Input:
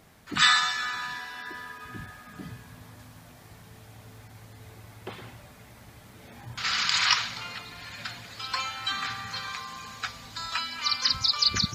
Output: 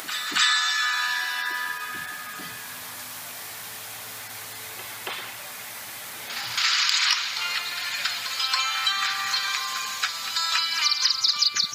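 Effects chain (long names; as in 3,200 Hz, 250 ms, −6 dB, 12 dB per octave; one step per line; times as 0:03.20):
high-pass filter 370 Hz 6 dB per octave
tilt shelving filter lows −7.5 dB, about 720 Hz
upward compression, threshold −39 dBFS
high-shelf EQ 9,500 Hz +6 dB
downward compressor 3 to 1, threshold −29 dBFS, peak gain reduction 14.5 dB
backwards echo 277 ms −10.5 dB
saturating transformer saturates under 3,800 Hz
level +6.5 dB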